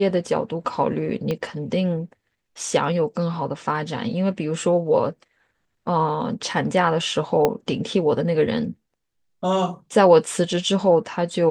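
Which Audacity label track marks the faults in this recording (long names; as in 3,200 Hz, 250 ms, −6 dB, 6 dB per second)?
1.310000	1.310000	click −13 dBFS
7.450000	7.450000	click −6 dBFS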